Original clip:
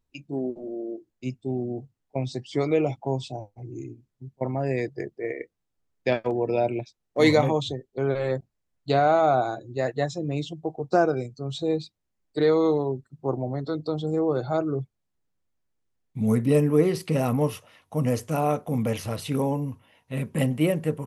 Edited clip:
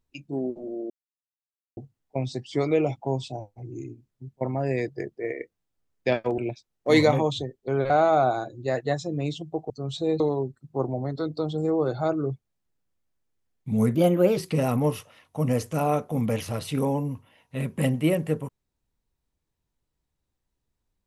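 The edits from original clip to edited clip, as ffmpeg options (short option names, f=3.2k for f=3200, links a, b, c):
-filter_complex "[0:a]asplit=9[a][b][c][d][e][f][g][h][i];[a]atrim=end=0.9,asetpts=PTS-STARTPTS,afade=t=out:st=0.896:d=0.004:c=hsin[j];[b]atrim=start=0.9:end=1.77,asetpts=PTS-STARTPTS,volume=0[k];[c]atrim=start=1.77:end=6.382,asetpts=PTS-STARTPTS,afade=t=in:d=0.004:c=hsin[l];[d]atrim=start=6.678:end=8.202[m];[e]atrim=start=9.008:end=10.812[n];[f]atrim=start=11.308:end=11.812[o];[g]atrim=start=12.688:end=16.444[p];[h]atrim=start=16.44:end=16.94,asetpts=PTS-STARTPTS,asetrate=52479,aresample=44100,atrim=end_sample=18529,asetpts=PTS-STARTPTS[q];[i]atrim=start=16.936[r];[j][k][l]concat=n=3:v=0:a=1[s];[s][m]acrossfade=d=0.004:c1=hsin:c2=hsin[t];[t][n]acrossfade=d=0.004:c1=hsin:c2=hsin[u];[u][o]acrossfade=d=0.004:c1=hsin:c2=hsin[v];[v][p]acrossfade=d=0.004:c1=hsin:c2=hsin[w];[w][q]acrossfade=d=0.004:c1=hsin:c2=hsin[x];[x][r]acrossfade=d=0.004:c1=hsin:c2=hsin"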